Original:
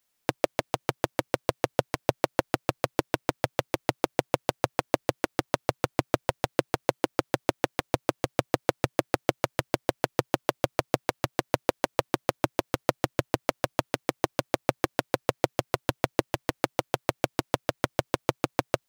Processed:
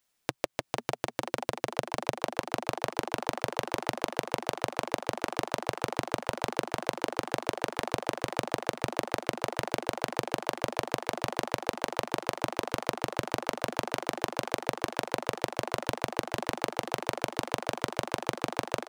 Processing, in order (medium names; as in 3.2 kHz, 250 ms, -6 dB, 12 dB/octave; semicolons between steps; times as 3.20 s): frequency-shifting echo 492 ms, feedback 52%, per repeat +110 Hz, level -5.5 dB; compression, threshold -26 dBFS, peak gain reduction 10.5 dB; peaking EQ 15 kHz -8 dB 0.33 oct